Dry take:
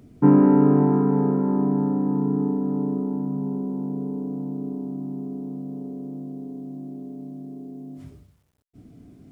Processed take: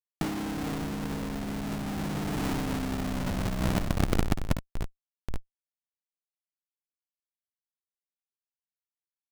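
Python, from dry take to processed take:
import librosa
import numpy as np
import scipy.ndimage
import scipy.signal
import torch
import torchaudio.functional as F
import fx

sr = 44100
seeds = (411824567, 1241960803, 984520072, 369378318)

p1 = fx.doppler_pass(x, sr, speed_mps=22, closest_m=26.0, pass_at_s=2.78)
p2 = fx.peak_eq(p1, sr, hz=590.0, db=-11.5, octaves=0.29)
p3 = np.sign(p2) * np.maximum(np.abs(p2) - 10.0 ** (-46.0 / 20.0), 0.0)
p4 = p2 + F.gain(torch.from_numpy(p3), -11.0).numpy()
p5 = fx.dmg_crackle(p4, sr, seeds[0], per_s=200.0, level_db=-33.0)
p6 = fx.schmitt(p5, sr, flips_db=-24.5)
p7 = p6 + fx.room_early_taps(p6, sr, ms=(54, 73), db=(-10.5, -13.0), dry=0)
p8 = fx.over_compress(p7, sr, threshold_db=-31.0, ratio=-0.5)
y = F.gain(torch.from_numpy(p8), 3.5).numpy()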